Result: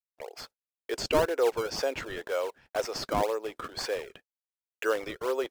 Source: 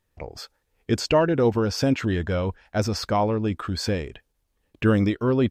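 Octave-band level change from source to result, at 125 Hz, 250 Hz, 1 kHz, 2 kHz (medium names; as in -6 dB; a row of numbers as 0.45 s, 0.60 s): -21.5 dB, -16.0 dB, -4.5 dB, -3.5 dB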